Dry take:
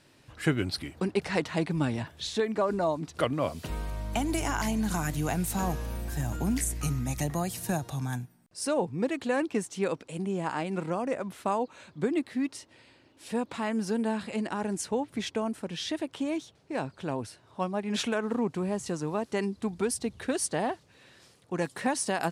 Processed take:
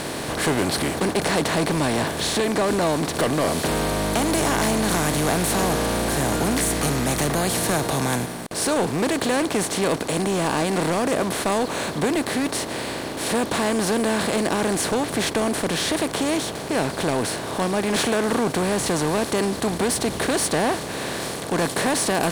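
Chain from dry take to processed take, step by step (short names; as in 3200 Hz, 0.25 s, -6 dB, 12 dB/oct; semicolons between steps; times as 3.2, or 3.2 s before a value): per-bin compression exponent 0.4; sample leveller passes 3; low shelf 190 Hz -3.5 dB; gain -7 dB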